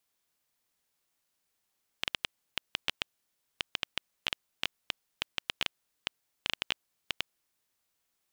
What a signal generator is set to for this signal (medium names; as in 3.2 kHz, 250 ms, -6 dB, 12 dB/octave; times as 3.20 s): random clicks 5.9 per s -10.5 dBFS 5.69 s